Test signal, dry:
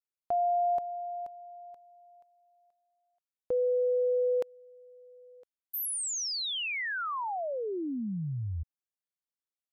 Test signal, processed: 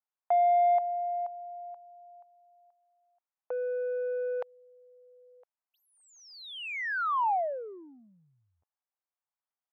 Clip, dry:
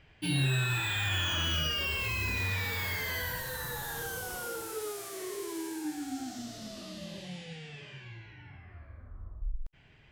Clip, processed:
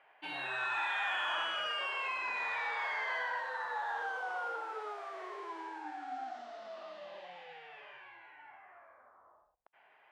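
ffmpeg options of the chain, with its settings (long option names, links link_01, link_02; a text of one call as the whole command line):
ffmpeg -i in.wav -filter_complex "[0:a]asplit=2[link_01][link_02];[link_02]highpass=frequency=720:poles=1,volume=10dB,asoftclip=type=tanh:threshold=-18.5dB[link_03];[link_01][link_03]amix=inputs=2:normalize=0,lowpass=frequency=5400:poles=1,volume=-6dB,adynamicsmooth=sensitivity=0.5:basefreq=1500,highpass=frequency=790:width_type=q:width=1.8" out.wav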